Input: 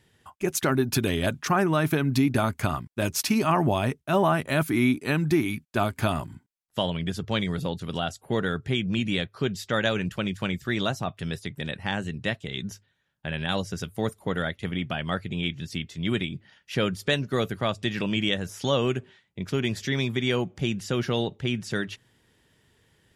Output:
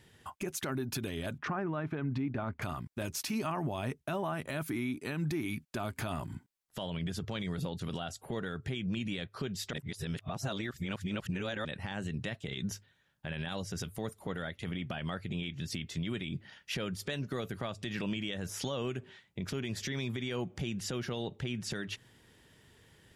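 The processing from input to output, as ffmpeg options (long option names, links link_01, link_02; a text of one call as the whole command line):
ffmpeg -i in.wav -filter_complex "[0:a]asettb=1/sr,asplit=3[link_01][link_02][link_03];[link_01]atrim=end=1.384[link_04];[link_02]atrim=start=1.38:end=2.62,asetpts=PTS-STARTPTS,afade=type=in:duration=0.004:curve=qsin,afade=type=out:start_time=1.236:duration=0.004:curve=qsin,lowpass=2000[link_05];[link_03]atrim=start=2.616[link_06];[link_04][link_05]acrossfade=duration=0.004:curve1=hsin:curve2=qsin[link_07];[link_07][link_06]acrossfade=duration=0.004:curve1=qsin:curve2=hsin,asplit=3[link_08][link_09][link_10];[link_08]atrim=end=9.732[link_11];[link_09]atrim=start=9.728:end=11.652,asetpts=PTS-STARTPTS,areverse[link_12];[link_10]atrim=start=11.648[link_13];[link_11][link_12]acrossfade=duration=0.004:curve1=hsin:curve2=hsin[link_14];[link_14][link_13]acrossfade=duration=0.004:curve1=hsin:curve2=hsin,acompressor=threshold=-32dB:ratio=6,alimiter=level_in=5dB:limit=-24dB:level=0:latency=1:release=37,volume=-5dB,volume=2.5dB" out.wav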